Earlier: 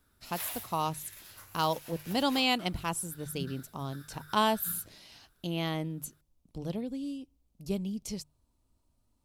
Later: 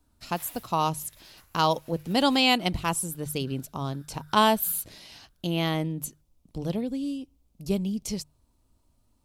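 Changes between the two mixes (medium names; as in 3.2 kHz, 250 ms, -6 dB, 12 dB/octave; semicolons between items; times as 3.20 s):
speech +6.0 dB; background -8.0 dB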